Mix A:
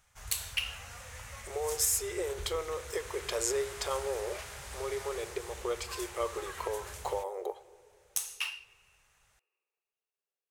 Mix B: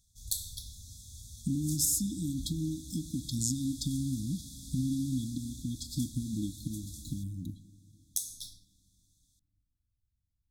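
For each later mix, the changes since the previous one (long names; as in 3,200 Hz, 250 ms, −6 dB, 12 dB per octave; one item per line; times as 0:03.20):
speech: remove linear-phase brick-wall high-pass 350 Hz
master: add linear-phase brick-wall band-stop 320–3,300 Hz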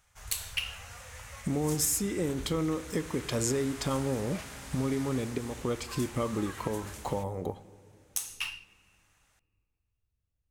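master: remove linear-phase brick-wall band-stop 320–3,300 Hz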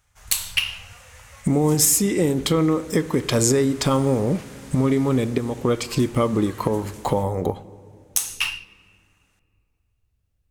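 speech +11.0 dB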